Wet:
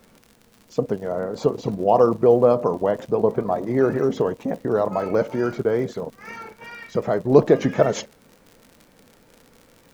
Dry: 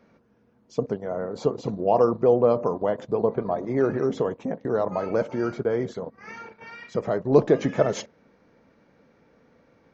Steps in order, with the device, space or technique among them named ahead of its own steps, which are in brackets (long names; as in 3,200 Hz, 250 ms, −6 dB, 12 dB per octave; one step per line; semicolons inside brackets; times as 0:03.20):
vinyl LP (tape wow and flutter; surface crackle 77 per second −39 dBFS; pink noise bed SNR 39 dB)
level +3.5 dB